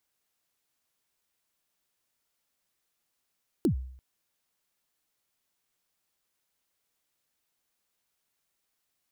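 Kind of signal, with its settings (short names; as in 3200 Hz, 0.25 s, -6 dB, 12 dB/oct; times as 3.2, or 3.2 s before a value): kick drum length 0.34 s, from 390 Hz, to 64 Hz, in 0.1 s, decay 0.64 s, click on, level -18.5 dB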